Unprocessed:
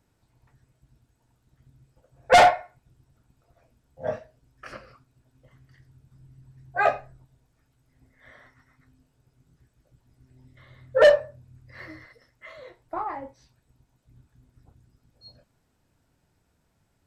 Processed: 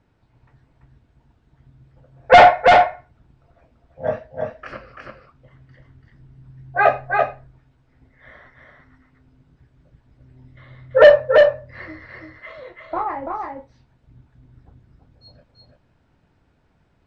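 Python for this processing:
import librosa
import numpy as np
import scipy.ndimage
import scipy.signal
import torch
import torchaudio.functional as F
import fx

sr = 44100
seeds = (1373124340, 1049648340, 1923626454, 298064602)

y = scipy.signal.sosfilt(scipy.signal.butter(2, 3200.0, 'lowpass', fs=sr, output='sos'), x)
y = y + 10.0 ** (-3.5 / 20.0) * np.pad(y, (int(337 * sr / 1000.0), 0))[:len(y)]
y = F.gain(torch.from_numpy(y), 6.5).numpy()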